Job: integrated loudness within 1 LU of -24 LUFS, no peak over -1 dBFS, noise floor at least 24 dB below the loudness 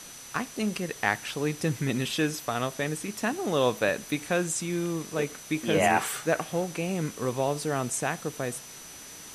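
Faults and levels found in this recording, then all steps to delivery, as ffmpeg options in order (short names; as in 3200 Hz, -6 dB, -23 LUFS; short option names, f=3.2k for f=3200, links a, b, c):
steady tone 6000 Hz; tone level -47 dBFS; noise floor -45 dBFS; noise floor target -53 dBFS; loudness -29.0 LUFS; peak -7.5 dBFS; loudness target -24.0 LUFS
-> -af "bandreject=f=6k:w=30"
-af "afftdn=nr=8:nf=-45"
-af "volume=5dB"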